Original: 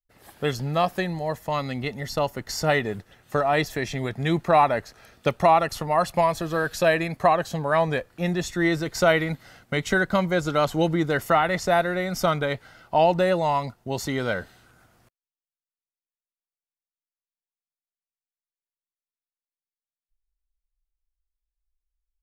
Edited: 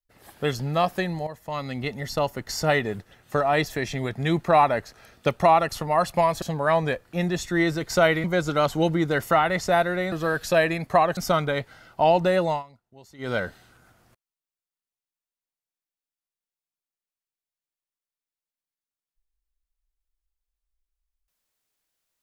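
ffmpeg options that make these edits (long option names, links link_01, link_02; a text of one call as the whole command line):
ffmpeg -i in.wav -filter_complex "[0:a]asplit=8[link_01][link_02][link_03][link_04][link_05][link_06][link_07][link_08];[link_01]atrim=end=1.27,asetpts=PTS-STARTPTS,afade=type=out:start_time=1.266:duration=0.004:curve=hsin:silence=0.251189[link_09];[link_02]atrim=start=1.27:end=6.422,asetpts=PTS-STARTPTS,afade=type=in:duration=0.59:silence=0.251189[link_10];[link_03]atrim=start=7.468:end=9.292[link_11];[link_04]atrim=start=10.228:end=12.112[link_12];[link_05]atrim=start=6.418:end=7.472[link_13];[link_06]atrim=start=12.108:end=13.57,asetpts=PTS-STARTPTS,afade=type=out:start_time=1.332:duration=0.13:silence=0.0891251[link_14];[link_07]atrim=start=13.57:end=14.12,asetpts=PTS-STARTPTS,volume=-21dB[link_15];[link_08]atrim=start=14.12,asetpts=PTS-STARTPTS,afade=type=in:duration=0.13:silence=0.0891251[link_16];[link_09][link_10]concat=n=2:v=0:a=1[link_17];[link_17][link_11]acrossfade=duration=0.004:curve1=hsin:curve2=hsin[link_18];[link_18][link_12]acrossfade=duration=0.004:curve1=hsin:curve2=hsin[link_19];[link_19][link_13]acrossfade=duration=0.004:curve1=hsin:curve2=hsin[link_20];[link_14][link_15][link_16]concat=n=3:v=0:a=1[link_21];[link_20][link_21]acrossfade=duration=0.004:curve1=hsin:curve2=hsin" out.wav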